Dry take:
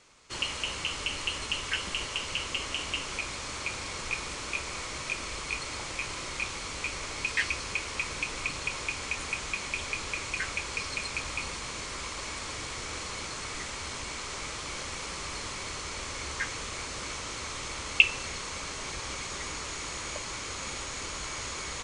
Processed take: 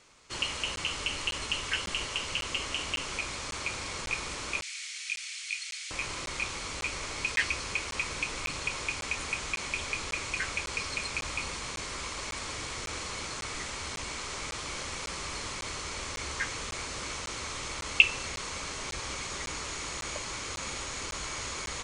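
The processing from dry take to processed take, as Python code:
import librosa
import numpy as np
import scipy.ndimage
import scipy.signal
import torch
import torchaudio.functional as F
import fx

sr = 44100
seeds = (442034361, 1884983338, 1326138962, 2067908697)

y = fx.cheby2_highpass(x, sr, hz=780.0, order=4, stop_db=50, at=(4.62, 5.91))
y = fx.buffer_crackle(y, sr, first_s=0.76, period_s=0.55, block=512, kind='zero')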